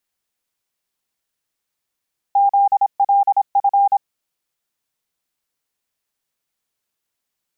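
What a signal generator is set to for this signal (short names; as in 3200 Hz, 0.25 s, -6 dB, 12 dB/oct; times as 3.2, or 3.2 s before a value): Morse "ZLF" 26 wpm 800 Hz -10.5 dBFS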